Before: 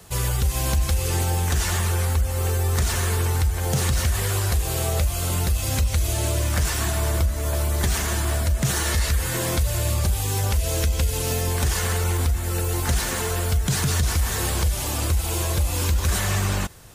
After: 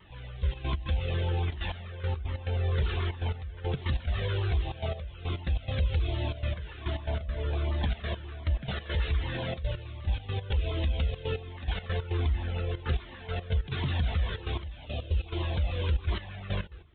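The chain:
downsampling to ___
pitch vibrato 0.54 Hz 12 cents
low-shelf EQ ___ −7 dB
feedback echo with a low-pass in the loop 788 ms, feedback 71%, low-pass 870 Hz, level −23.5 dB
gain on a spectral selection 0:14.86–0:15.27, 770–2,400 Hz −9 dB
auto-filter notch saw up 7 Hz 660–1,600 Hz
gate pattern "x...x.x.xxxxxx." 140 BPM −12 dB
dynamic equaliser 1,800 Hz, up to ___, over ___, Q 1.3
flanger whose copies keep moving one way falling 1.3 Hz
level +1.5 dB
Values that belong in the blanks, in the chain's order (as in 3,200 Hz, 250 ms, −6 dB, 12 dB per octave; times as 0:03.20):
8,000 Hz, 140 Hz, −4 dB, −44 dBFS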